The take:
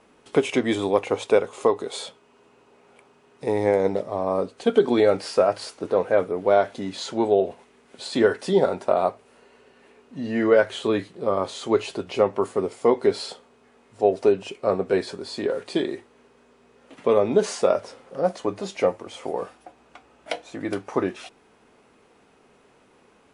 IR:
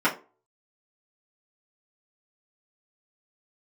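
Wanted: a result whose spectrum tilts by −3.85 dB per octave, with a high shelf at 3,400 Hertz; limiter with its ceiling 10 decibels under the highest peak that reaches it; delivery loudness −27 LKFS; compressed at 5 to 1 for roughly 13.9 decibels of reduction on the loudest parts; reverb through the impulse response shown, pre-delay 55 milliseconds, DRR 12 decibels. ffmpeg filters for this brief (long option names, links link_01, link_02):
-filter_complex "[0:a]highshelf=frequency=3400:gain=-5,acompressor=threshold=-29dB:ratio=5,alimiter=level_in=1dB:limit=-24dB:level=0:latency=1,volume=-1dB,asplit=2[link_01][link_02];[1:a]atrim=start_sample=2205,adelay=55[link_03];[link_02][link_03]afir=irnorm=-1:irlink=0,volume=-28dB[link_04];[link_01][link_04]amix=inputs=2:normalize=0,volume=10dB"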